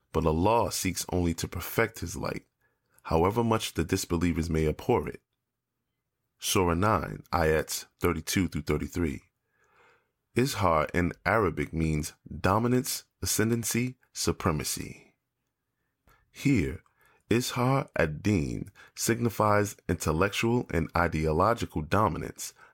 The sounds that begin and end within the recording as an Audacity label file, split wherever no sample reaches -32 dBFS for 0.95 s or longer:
6.440000	9.170000	sound
10.360000	14.920000	sound